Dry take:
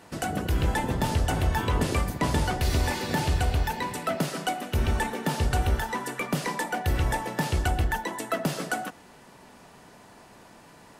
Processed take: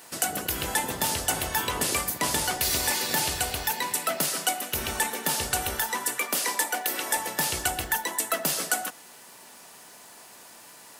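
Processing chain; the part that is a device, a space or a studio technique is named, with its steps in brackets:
turntable without a phono preamp (RIAA equalisation recording; white noise bed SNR 35 dB)
0:06.18–0:07.17: high-pass filter 230 Hz 24 dB per octave

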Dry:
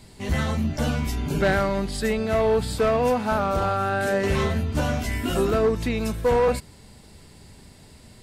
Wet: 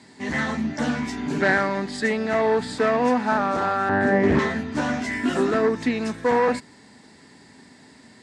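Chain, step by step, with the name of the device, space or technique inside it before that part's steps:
0:03.89–0:04.39: spectral tilt −3.5 dB per octave
full-range speaker at full volume (highs frequency-modulated by the lows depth 0.65 ms; loudspeaker in its box 200–8,200 Hz, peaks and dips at 260 Hz +9 dB, 550 Hz −3 dB, 910 Hz +4 dB, 1,800 Hz +10 dB, 2,900 Hz −4 dB)

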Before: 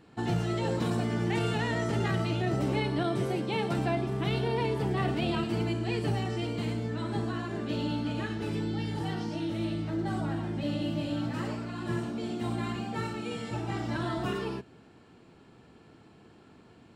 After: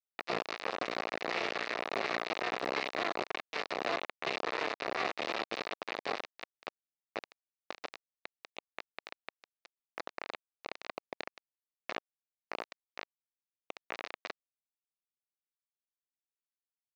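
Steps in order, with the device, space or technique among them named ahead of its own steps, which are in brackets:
hand-held game console (bit reduction 4 bits; loudspeaker in its box 500–4,000 Hz, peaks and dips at 920 Hz −6 dB, 1,500 Hz −6 dB, 3,200 Hz −9 dB)

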